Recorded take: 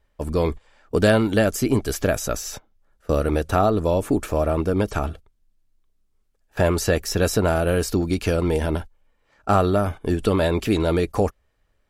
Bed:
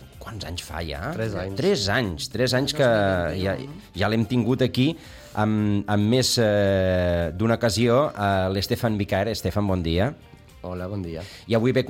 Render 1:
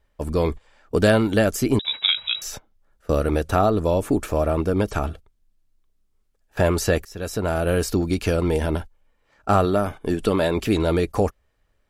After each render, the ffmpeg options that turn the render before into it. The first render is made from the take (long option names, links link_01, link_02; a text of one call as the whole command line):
ffmpeg -i in.wav -filter_complex "[0:a]asettb=1/sr,asplit=3[link_01][link_02][link_03];[link_01]atrim=end=1.794[link_04];[link_02]atrim=start=1.79:end=2.42,asetpts=PTS-STARTPTS,afade=type=in:duration=0.004:curve=qsin,afade=type=out:start_time=0.626:duration=0.004:curve=qsin,lowpass=frequency=3300:width_type=q:width=0.5098,lowpass=frequency=3300:width_type=q:width=0.6013,lowpass=frequency=3300:width_type=q:width=0.9,lowpass=frequency=3300:width_type=q:width=2.563,afreqshift=-3900[link_05];[link_03]atrim=start=2.416[link_06];[link_04][link_05]acrossfade=duration=0.004:curve1=hsin:curve2=qsin[link_07];[link_07][link_06]acrossfade=duration=0.004:curve1=qsin:curve2=hsin,asettb=1/sr,asplit=3[link_08][link_09][link_10];[link_08]atrim=end=9.654[link_11];[link_09]atrim=start=9.65:end=10.57,asetpts=PTS-STARTPTS,afade=type=in:duration=0.004:curve=qsin,afade=type=out:start_time=0.916:duration=0.004:curve=qsin,equalizer=frequency=71:width=1.5:gain=-10[link_12];[link_10]atrim=start=10.566[link_13];[link_11][link_12]acrossfade=duration=0.004:curve1=hsin:curve2=qsin[link_14];[link_14][link_13]acrossfade=duration=0.004:curve1=qsin:curve2=hsin,asplit=2[link_15][link_16];[link_15]atrim=end=7.05,asetpts=PTS-STARTPTS,afade=type=out:start_time=7.046:duration=0.004:curve=hsin:silence=0.0841395[link_17];[link_16]atrim=start=7.05,asetpts=PTS-STARTPTS,afade=type=in:duration=0.68:silence=0.0841395[link_18];[link_17][link_18]concat=n=2:v=0:a=1" out.wav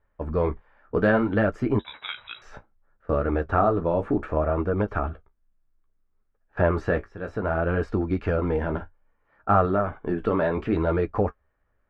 ffmpeg -i in.wav -af "lowpass=frequency=1500:width_type=q:width=1.6,flanger=delay=8.9:depth=8.8:regen=-41:speed=0.63:shape=sinusoidal" out.wav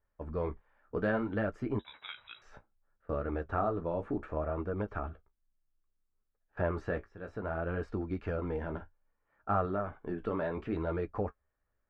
ffmpeg -i in.wav -af "volume=-10.5dB" out.wav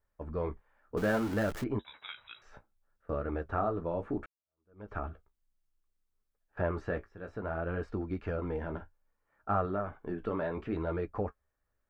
ffmpeg -i in.wav -filter_complex "[0:a]asettb=1/sr,asplit=3[link_01][link_02][link_03];[link_01]atrim=end=0.974[link_04];[link_02]atrim=start=0.97:end=1.64,asetpts=PTS-STARTPTS,afade=type=in:duration=0.004:curve=qsin,afade=type=out:start_time=0.666:duration=0.004:curve=qsin,aeval=exprs='val(0)+0.5*0.015*sgn(val(0))':channel_layout=same[link_05];[link_03]atrim=start=1.636[link_06];[link_04][link_05]acrossfade=duration=0.004:curve1=hsin:curve2=qsin[link_07];[link_07][link_06]acrossfade=duration=0.004:curve1=qsin:curve2=hsin,asplit=2[link_08][link_09];[link_08]atrim=end=4.26,asetpts=PTS-STARTPTS,afade=type=out:start_time=4.256:duration=0.004:curve=hsin[link_10];[link_09]atrim=start=4.26,asetpts=PTS-STARTPTS,afade=type=in:duration=0.64:curve=exp[link_11];[link_10][link_11]concat=n=2:v=0:a=1" out.wav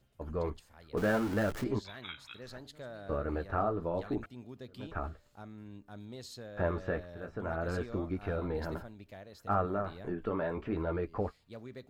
ffmpeg -i in.wav -i bed.wav -filter_complex "[1:a]volume=-26.5dB[link_01];[0:a][link_01]amix=inputs=2:normalize=0" out.wav